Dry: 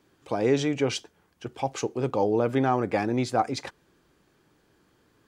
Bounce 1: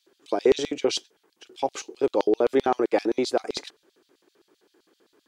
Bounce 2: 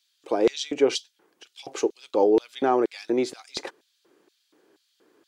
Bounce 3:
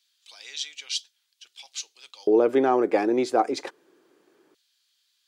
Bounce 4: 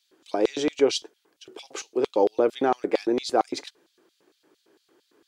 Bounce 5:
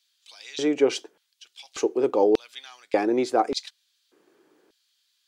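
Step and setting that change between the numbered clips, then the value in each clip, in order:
LFO high-pass, rate: 7.7 Hz, 2.1 Hz, 0.22 Hz, 4.4 Hz, 0.85 Hz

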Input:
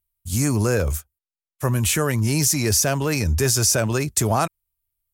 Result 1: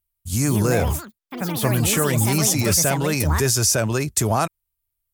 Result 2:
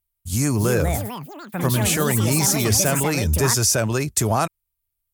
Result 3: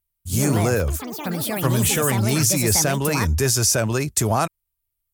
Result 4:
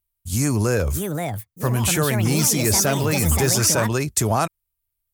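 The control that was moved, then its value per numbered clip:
ever faster or slower copies, time: 253 ms, 387 ms, 101 ms, 719 ms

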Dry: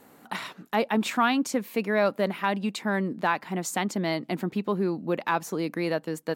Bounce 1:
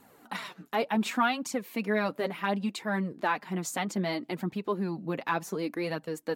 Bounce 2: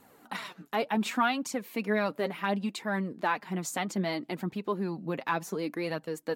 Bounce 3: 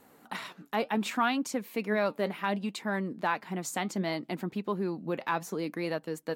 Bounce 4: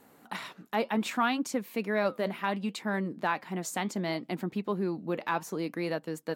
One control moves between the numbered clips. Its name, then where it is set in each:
flange, regen: -8%, +27%, +73%, -81%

